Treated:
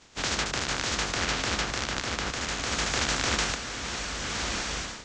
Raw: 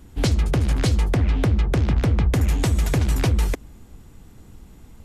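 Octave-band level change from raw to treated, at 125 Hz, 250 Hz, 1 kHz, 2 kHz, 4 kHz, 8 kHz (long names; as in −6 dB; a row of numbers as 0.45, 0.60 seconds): −18.0, −10.5, +2.5, +5.5, +7.0, +6.0 decibels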